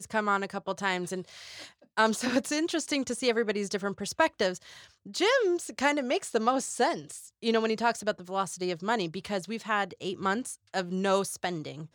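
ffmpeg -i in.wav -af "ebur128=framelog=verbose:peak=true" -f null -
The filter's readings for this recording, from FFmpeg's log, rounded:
Integrated loudness:
  I:         -29.4 LUFS
  Threshold: -39.7 LUFS
Loudness range:
  LRA:         2.8 LU
  Threshold: -49.5 LUFS
  LRA low:   -31.0 LUFS
  LRA high:  -28.2 LUFS
True peak:
  Peak:      -10.4 dBFS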